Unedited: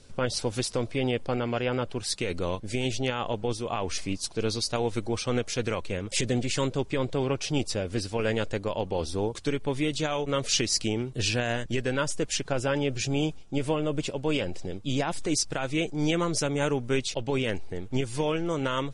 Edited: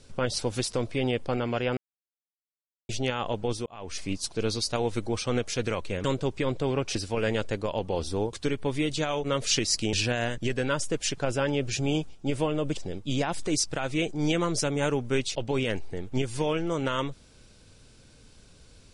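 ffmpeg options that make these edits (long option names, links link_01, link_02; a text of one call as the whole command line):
ffmpeg -i in.wav -filter_complex "[0:a]asplit=8[link_01][link_02][link_03][link_04][link_05][link_06][link_07][link_08];[link_01]atrim=end=1.77,asetpts=PTS-STARTPTS,afade=type=out:start_time=1.766:duration=0.004:curve=hsin[link_09];[link_02]atrim=start=1.77:end=2.89,asetpts=PTS-STARTPTS,volume=0[link_10];[link_03]atrim=start=2.89:end=3.66,asetpts=PTS-STARTPTS,afade=type=in:duration=0.004:curve=hsin,afade=type=out:start_time=0.766:duration=0.004:curve=hsin[link_11];[link_04]atrim=start=3.66:end=6.042,asetpts=PTS-STARTPTS,afade=type=in:duration=0.46[link_12];[link_05]atrim=start=6.568:end=7.482[link_13];[link_06]atrim=start=7.968:end=10.952[link_14];[link_07]atrim=start=11.208:end=14.052[link_15];[link_08]atrim=start=14.558[link_16];[link_09][link_10][link_11][link_12]concat=n=4:v=0:a=1[link_17];[link_17][link_13]acrossfade=duration=0.004:curve1=hsin:curve2=hsin[link_18];[link_18][link_14]acrossfade=duration=0.004:curve1=hsin:curve2=hsin[link_19];[link_19][link_15]acrossfade=duration=0.004:curve1=hsin:curve2=hsin[link_20];[link_20][link_16]acrossfade=duration=0.004:curve1=hsin:curve2=hsin" out.wav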